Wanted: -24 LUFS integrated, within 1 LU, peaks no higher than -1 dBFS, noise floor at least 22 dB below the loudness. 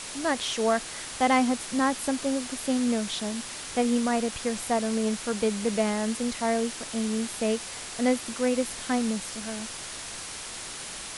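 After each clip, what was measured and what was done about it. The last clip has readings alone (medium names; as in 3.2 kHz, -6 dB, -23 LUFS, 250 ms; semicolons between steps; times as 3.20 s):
noise floor -39 dBFS; noise floor target -50 dBFS; loudness -28.0 LUFS; peak level -10.5 dBFS; loudness target -24.0 LUFS
-> noise print and reduce 11 dB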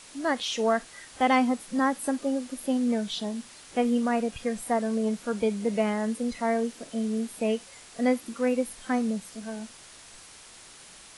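noise floor -49 dBFS; noise floor target -50 dBFS
-> noise print and reduce 6 dB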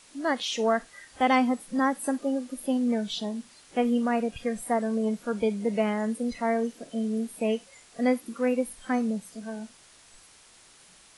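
noise floor -55 dBFS; loudness -28.0 LUFS; peak level -11.0 dBFS; loudness target -24.0 LUFS
-> trim +4 dB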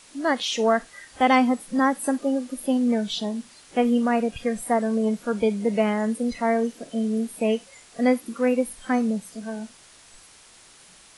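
loudness -24.0 LUFS; peak level -7.0 dBFS; noise floor -51 dBFS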